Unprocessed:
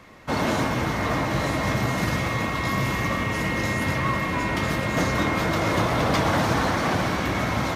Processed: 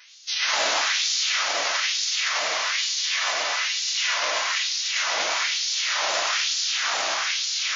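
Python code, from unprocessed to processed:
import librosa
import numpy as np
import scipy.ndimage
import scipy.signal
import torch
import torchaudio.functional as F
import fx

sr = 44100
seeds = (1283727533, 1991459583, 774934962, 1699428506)

y = fx.envelope_flatten(x, sr, power=0.1)
y = fx.bessel_highpass(y, sr, hz=240.0, order=2, at=(2.91, 4.42))
y = fx.rider(y, sr, range_db=10, speed_s=2.0)
y = fx.brickwall_lowpass(y, sr, high_hz=6700.0)
y = fx.wow_flutter(y, sr, seeds[0], rate_hz=2.1, depth_cents=140.0)
y = y + 10.0 ** (-4.5 / 20.0) * np.pad(y, (int(239 * sr / 1000.0), 0))[:len(y)]
y = fx.rev_freeverb(y, sr, rt60_s=1.2, hf_ratio=0.85, predelay_ms=65, drr_db=-0.5)
y = fx.filter_lfo_highpass(y, sr, shape='sine', hz=1.1, low_hz=590.0, high_hz=4500.0, q=1.6)
y = fx.env_flatten(y, sr, amount_pct=50, at=(0.87, 1.43))
y = y * 10.0 ** (-3.0 / 20.0)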